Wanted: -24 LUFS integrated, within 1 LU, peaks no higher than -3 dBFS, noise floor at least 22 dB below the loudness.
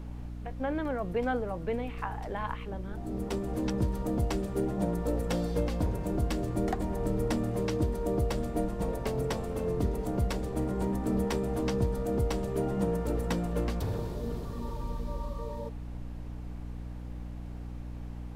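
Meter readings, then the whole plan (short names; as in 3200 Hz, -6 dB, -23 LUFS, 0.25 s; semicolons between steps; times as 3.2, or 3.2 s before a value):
hum 60 Hz; harmonics up to 300 Hz; hum level -38 dBFS; noise floor -40 dBFS; noise floor target -55 dBFS; loudness -33.0 LUFS; peak -17.5 dBFS; loudness target -24.0 LUFS
-> de-hum 60 Hz, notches 5; noise print and reduce 15 dB; gain +9 dB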